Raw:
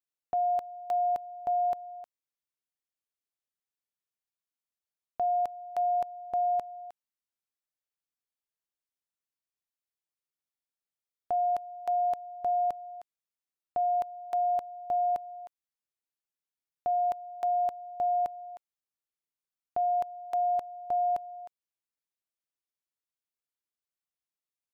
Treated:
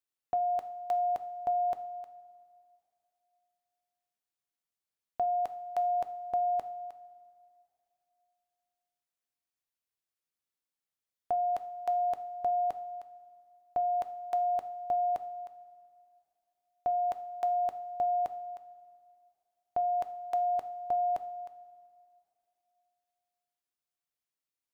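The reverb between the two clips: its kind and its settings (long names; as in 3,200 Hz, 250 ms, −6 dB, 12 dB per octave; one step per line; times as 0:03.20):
coupled-rooms reverb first 0.49 s, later 2.6 s, from −14 dB, DRR 10.5 dB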